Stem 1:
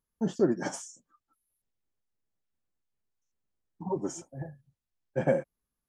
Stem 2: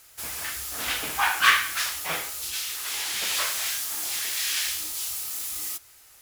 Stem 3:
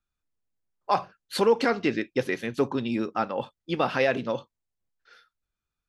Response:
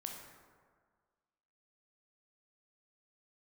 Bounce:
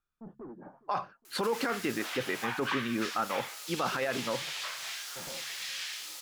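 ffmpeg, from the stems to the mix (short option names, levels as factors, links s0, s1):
-filter_complex "[0:a]asoftclip=type=tanh:threshold=0.0316,lowpass=f=1300:w=0.5412,lowpass=f=1300:w=1.3066,volume=0.266,asplit=2[s0][s1];[s1]volume=0.0944[s2];[1:a]highpass=490,acrossover=split=6300[s3][s4];[s4]acompressor=threshold=0.00708:ratio=4:attack=1:release=60[s5];[s3][s5]amix=inputs=2:normalize=0,adelay=1250,volume=0.668[s6];[2:a]equalizer=f=1300:w=1.5:g=7.5,volume=0.562[s7];[s0][s6]amix=inputs=2:normalize=0,bandreject=f=70.3:t=h:w=4,bandreject=f=140.6:t=h:w=4,bandreject=f=210.9:t=h:w=4,acompressor=threshold=0.0141:ratio=2.5,volume=1[s8];[s2]aecho=0:1:413|826|1239|1652|2065|2478|2891:1|0.47|0.221|0.104|0.0488|0.0229|0.0108[s9];[s7][s8][s9]amix=inputs=3:normalize=0,alimiter=limit=0.0944:level=0:latency=1:release=22"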